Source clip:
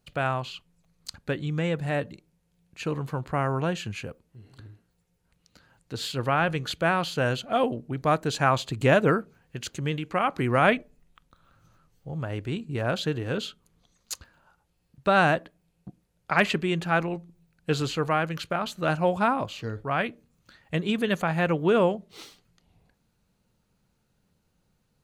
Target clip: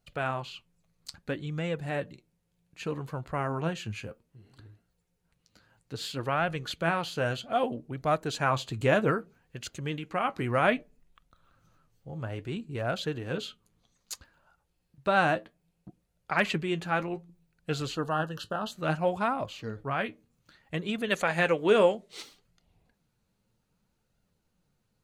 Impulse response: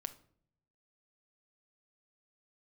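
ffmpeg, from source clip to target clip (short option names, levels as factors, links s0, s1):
-filter_complex "[0:a]asplit=3[s0][s1][s2];[s0]afade=t=out:st=21.1:d=0.02[s3];[s1]equalizer=f=125:t=o:w=1:g=-7,equalizer=f=500:t=o:w=1:g=5,equalizer=f=2000:t=o:w=1:g=6,equalizer=f=4000:t=o:w=1:g=5,equalizer=f=8000:t=o:w=1:g=10,afade=t=in:st=21.1:d=0.02,afade=t=out:st=22.21:d=0.02[s4];[s2]afade=t=in:st=22.21:d=0.02[s5];[s3][s4][s5]amix=inputs=3:normalize=0,flanger=delay=1.4:depth=8.2:regen=59:speed=0.62:shape=sinusoidal,asplit=3[s6][s7][s8];[s6]afade=t=out:st=17.94:d=0.02[s9];[s7]asuperstop=centerf=2200:order=12:qfactor=2.8,afade=t=in:st=17.94:d=0.02,afade=t=out:st=18.71:d=0.02[s10];[s8]afade=t=in:st=18.71:d=0.02[s11];[s9][s10][s11]amix=inputs=3:normalize=0"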